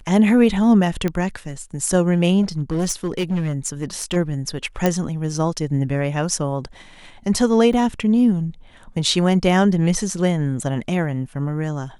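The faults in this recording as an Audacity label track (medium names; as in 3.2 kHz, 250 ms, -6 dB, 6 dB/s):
1.080000	1.080000	pop -11 dBFS
2.420000	4.170000	clipped -17 dBFS
4.860000	4.860000	pop -5 dBFS
7.730000	7.730000	dropout 4.3 ms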